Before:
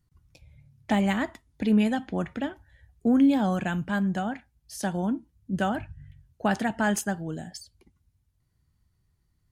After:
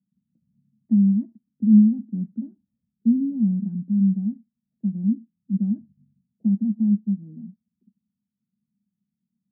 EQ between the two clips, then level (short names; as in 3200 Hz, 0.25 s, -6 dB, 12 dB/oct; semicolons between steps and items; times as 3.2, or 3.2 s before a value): Butterworth band-pass 210 Hz, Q 4.2; +8.5 dB